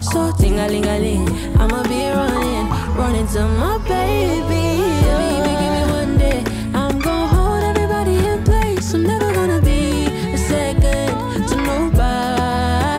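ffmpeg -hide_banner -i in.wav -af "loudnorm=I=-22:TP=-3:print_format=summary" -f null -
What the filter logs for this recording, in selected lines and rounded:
Input Integrated:    -17.5 LUFS
Input True Peak:      -5.4 dBTP
Input LRA:             1.0 LU
Input Threshold:     -27.5 LUFS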